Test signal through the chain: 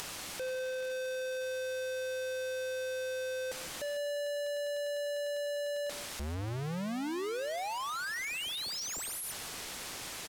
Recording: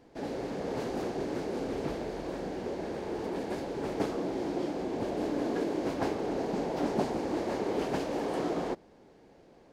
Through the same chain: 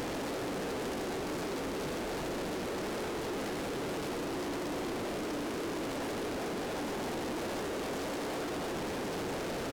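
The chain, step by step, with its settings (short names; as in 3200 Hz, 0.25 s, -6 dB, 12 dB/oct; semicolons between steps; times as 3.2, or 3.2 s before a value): infinite clipping; bell 320 Hz +2 dB 2.7 oct; upward compressor, threshold -36 dBFS; on a send: feedback echo 0.152 s, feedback 23%, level -13.5 dB; on the sum: decimation joined by straight lines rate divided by 2×; gain -4 dB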